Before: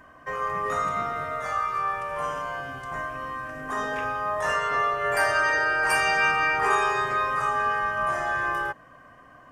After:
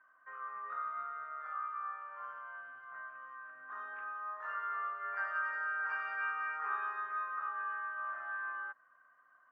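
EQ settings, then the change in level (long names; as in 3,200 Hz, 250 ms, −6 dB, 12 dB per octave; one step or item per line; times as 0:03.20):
resonant band-pass 1,400 Hz, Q 5.2
high-frequency loss of the air 180 metres
−6.5 dB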